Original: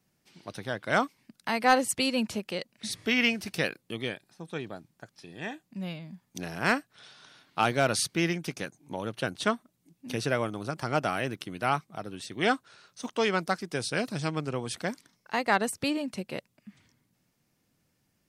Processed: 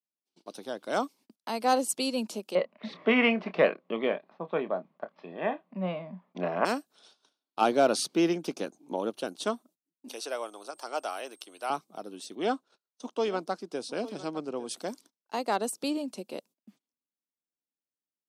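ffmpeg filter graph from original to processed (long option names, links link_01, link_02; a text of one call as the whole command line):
ffmpeg -i in.wav -filter_complex "[0:a]asettb=1/sr,asplit=3[link_01][link_02][link_03];[link_01]atrim=end=2.554[link_04];[link_02]atrim=start=2.55:end=6.65,asetpts=PTS-STARTPTS,afade=type=in:duration=0.004:curve=qsin,afade=type=out:start_time=4.096:duration=0.004:curve=qsin,acontrast=88,highpass=150,equalizer=frequency=170:width_type=q:width=4:gain=8,equalizer=frequency=310:width_type=q:width=4:gain=-7,equalizer=frequency=610:width_type=q:width=4:gain=9,equalizer=frequency=1100:width_type=q:width=4:gain=10,equalizer=frequency=2000:width_type=q:width=4:gain=9,lowpass=frequency=2600:width=0.5412,lowpass=frequency=2600:width=1.3066,asplit=2[link_05][link_06];[link_06]adelay=27,volume=-11.5dB[link_07];[link_05][link_07]amix=inputs=2:normalize=0,atrim=end_sample=180810[link_08];[link_03]atrim=start=6.646[link_09];[link_04][link_08]acrossfade=duration=0.004:curve1=hsin:curve2=qsin[link_10];[link_10][link_09]acrossfade=duration=0.004:curve1=qsin:curve2=hsin,asettb=1/sr,asplit=3[link_11][link_12][link_13];[link_11]atrim=end=7.614[link_14];[link_12]atrim=start=7.61:end=9.1,asetpts=PTS-STARTPTS,afade=type=in:duration=0.004:curve=qsin,afade=type=out:start_time=1.486:duration=0.004:curve=qsin,highshelf=frequency=5000:gain=-12,acontrast=46[link_15];[link_13]atrim=start=9.096[link_16];[link_14][link_15]acrossfade=duration=0.004:curve1=hsin:curve2=qsin[link_17];[link_17][link_16]acrossfade=duration=0.004:curve1=qsin:curve2=hsin,asettb=1/sr,asplit=3[link_18][link_19][link_20];[link_18]atrim=end=10.084[link_21];[link_19]atrim=start=10.08:end=11.7,asetpts=PTS-STARTPTS,afade=type=in:duration=0.004:curve=qsin,afade=type=out:start_time=1.616:duration=0.004:curve=qsin,highpass=610,aeval=exprs='val(0)+0.000891*sin(2*PI*8500*n/s)':channel_layout=same[link_22];[link_20]atrim=start=11.696[link_23];[link_21][link_22]acrossfade=duration=0.004:curve1=hsin:curve2=qsin[link_24];[link_24][link_23]acrossfade=duration=0.004:curve1=qsin:curve2=hsin,asettb=1/sr,asplit=3[link_25][link_26][link_27];[link_25]atrim=end=12.354[link_28];[link_26]atrim=start=12.35:end=14.69,asetpts=PTS-STARTPTS,afade=type=in:duration=0.004:curve=qsin,afade=type=out:start_time=2.336:duration=0.004:curve=qsin,aemphasis=mode=reproduction:type=50kf,agate=range=-10dB:threshold=-57dB:ratio=16:release=100:detection=peak,aecho=1:1:855:0.15,atrim=end_sample=103194[link_29];[link_27]atrim=start=14.686[link_30];[link_28][link_29]acrossfade=duration=0.004:curve1=hsin:curve2=qsin[link_31];[link_31][link_30]acrossfade=duration=0.004:curve1=qsin:curve2=hsin,agate=range=-27dB:threshold=-51dB:ratio=16:detection=peak,highpass=frequency=240:width=0.5412,highpass=frequency=240:width=1.3066,equalizer=frequency=1900:width_type=o:width=0.96:gain=-14.5" out.wav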